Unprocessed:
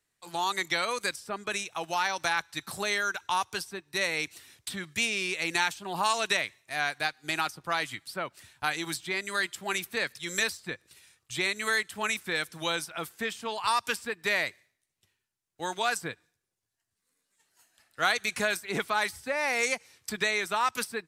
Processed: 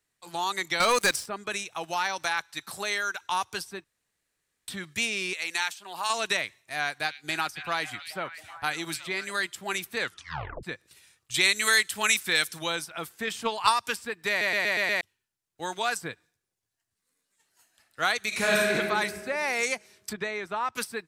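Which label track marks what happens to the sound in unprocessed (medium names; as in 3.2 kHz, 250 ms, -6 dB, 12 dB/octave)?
0.800000	1.260000	waveshaping leveller passes 3
2.240000	3.320000	bass shelf 290 Hz -7.5 dB
3.840000	4.680000	room tone
5.330000	6.100000	high-pass 1.2 kHz 6 dB/octave
6.740000	9.320000	repeats whose band climbs or falls 274 ms, band-pass from 3.1 kHz, each repeat -0.7 oct, level -8.5 dB
9.990000	9.990000	tape stop 0.64 s
11.340000	12.590000	treble shelf 2 kHz +11.5 dB
13.270000	13.740000	transient shaper attack +10 dB, sustain +6 dB
14.290000	14.290000	stutter in place 0.12 s, 6 plays
18.280000	18.740000	reverb throw, RT60 1.8 s, DRR -5.5 dB
20.130000	20.760000	low-pass 1.2 kHz 6 dB/octave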